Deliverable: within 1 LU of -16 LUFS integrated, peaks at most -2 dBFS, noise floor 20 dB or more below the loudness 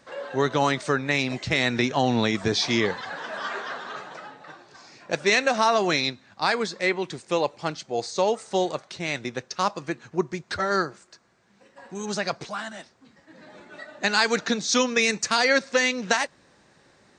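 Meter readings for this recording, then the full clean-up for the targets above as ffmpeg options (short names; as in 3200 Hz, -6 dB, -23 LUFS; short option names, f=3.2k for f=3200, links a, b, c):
loudness -25.0 LUFS; peak -6.0 dBFS; loudness target -16.0 LUFS
-> -af "volume=9dB,alimiter=limit=-2dB:level=0:latency=1"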